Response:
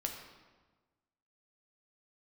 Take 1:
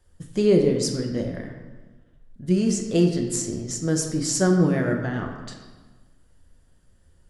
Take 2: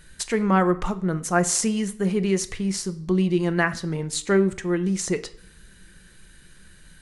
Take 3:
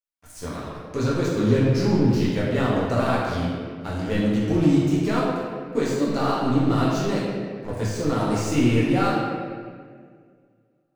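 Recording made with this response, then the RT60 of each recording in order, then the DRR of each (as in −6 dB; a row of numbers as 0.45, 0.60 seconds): 1; 1.3, 0.60, 1.9 seconds; 1.5, 10.5, −8.0 decibels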